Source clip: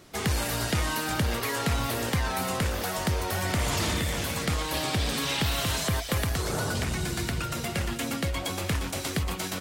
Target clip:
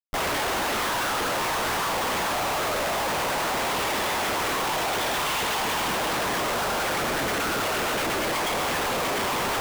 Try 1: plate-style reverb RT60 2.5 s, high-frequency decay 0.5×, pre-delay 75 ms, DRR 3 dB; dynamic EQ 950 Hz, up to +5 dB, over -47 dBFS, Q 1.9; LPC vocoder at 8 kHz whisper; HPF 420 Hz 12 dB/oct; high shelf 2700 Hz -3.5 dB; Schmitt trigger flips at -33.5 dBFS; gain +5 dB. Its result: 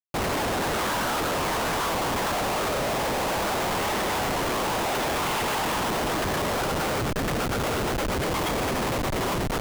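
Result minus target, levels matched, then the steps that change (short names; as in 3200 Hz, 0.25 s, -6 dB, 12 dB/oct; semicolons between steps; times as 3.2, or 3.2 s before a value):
Schmitt trigger: distortion +4 dB
change: Schmitt trigger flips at -44.5 dBFS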